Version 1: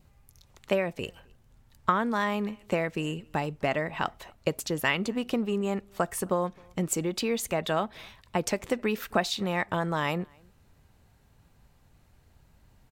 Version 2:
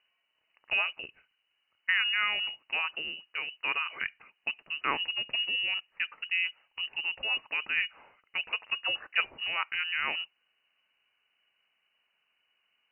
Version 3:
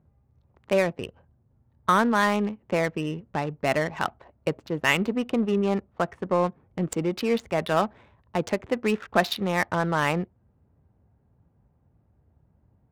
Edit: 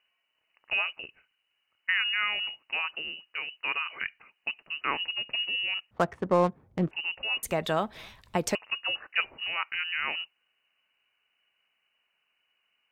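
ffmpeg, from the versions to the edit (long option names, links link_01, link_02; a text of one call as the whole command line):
ffmpeg -i take0.wav -i take1.wav -i take2.wav -filter_complex "[1:a]asplit=3[link_01][link_02][link_03];[link_01]atrim=end=5.912[link_04];[2:a]atrim=start=5.908:end=6.912[link_05];[link_02]atrim=start=6.908:end=7.432[link_06];[0:a]atrim=start=7.428:end=8.552[link_07];[link_03]atrim=start=8.548[link_08];[link_04][link_05]acrossfade=duration=0.004:curve1=hsin:curve2=hsin[link_09];[link_09][link_06]acrossfade=duration=0.004:curve1=hsin:curve2=hsin[link_10];[link_10][link_07]acrossfade=duration=0.004:curve1=hsin:curve2=hsin[link_11];[link_11][link_08]acrossfade=duration=0.004:curve1=hsin:curve2=hsin" out.wav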